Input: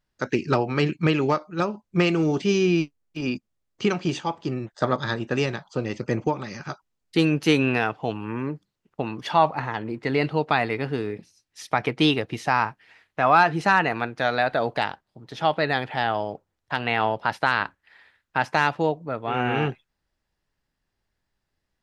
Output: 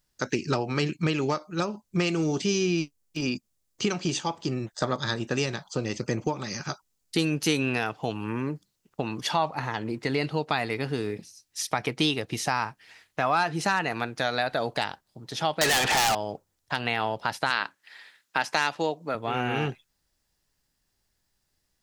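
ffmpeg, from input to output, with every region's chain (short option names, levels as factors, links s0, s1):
-filter_complex "[0:a]asettb=1/sr,asplit=3[s0][s1][s2];[s0]atrim=end=15.614[s3];[s1]atrim=start=15.61:end=16.15,asetpts=PTS-STARTPTS,afade=t=in:d=0.004:c=qsin,afade=t=out:st=0.536:d=0.004:c=qsin,aeval=exprs='(mod(3.55*val(0)+1,2)-1)/3.55':c=same,asplit=2[s4][s5];[s5]highpass=f=720:p=1,volume=50.1,asoftclip=type=tanh:threshold=0.282[s6];[s4][s6]amix=inputs=2:normalize=0,lowpass=f=3900:p=1,volume=0.501[s7];[s2]atrim=start=16.146[s8];[s3][s7]acrossfade=d=0.004:c1=hsin:c2=qsin[s9];[s9][s8]acrossfade=d=0.004:c1=qsin:c2=hsin,asettb=1/sr,asplit=3[s10][s11][s12];[s10]atrim=end=17.504[s13];[s11]atrim=start=17.5:end=19.15,asetpts=PTS-STARTPTS,afade=t=in:d=0.004:c=qsin,afade=t=out:st=1.646:d=0.004:c=qsin,highpass=200,equalizer=f=3300:w=0.35:g=4.5[s14];[s12]atrim=start=19.146[s15];[s13][s14]acrossfade=d=0.004:c1=hsin:c2=qsin[s16];[s16][s15]acrossfade=d=0.004:c1=qsin:c2=hsin,bass=f=250:g=1,treble=f=4000:g=13,acompressor=threshold=0.0501:ratio=2"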